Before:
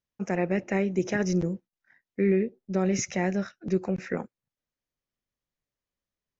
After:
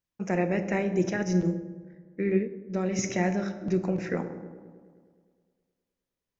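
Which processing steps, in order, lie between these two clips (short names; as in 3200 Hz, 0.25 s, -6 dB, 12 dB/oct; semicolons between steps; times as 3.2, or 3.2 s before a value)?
dark delay 0.104 s, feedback 70%, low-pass 800 Hz, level -12 dB; on a send at -8 dB: reverb RT60 1.2 s, pre-delay 3 ms; 1.09–3.04 on the sum: upward expander 1.5:1, over -32 dBFS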